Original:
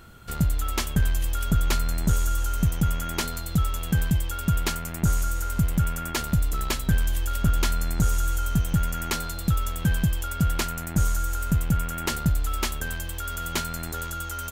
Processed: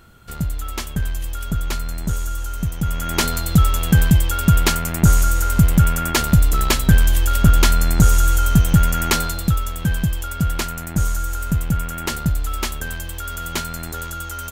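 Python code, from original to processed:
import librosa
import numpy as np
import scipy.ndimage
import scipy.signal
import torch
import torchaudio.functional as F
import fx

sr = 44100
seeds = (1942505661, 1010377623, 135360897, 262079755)

y = fx.gain(x, sr, db=fx.line((2.76, -0.5), (3.24, 9.5), (9.21, 9.5), (9.65, 3.0)))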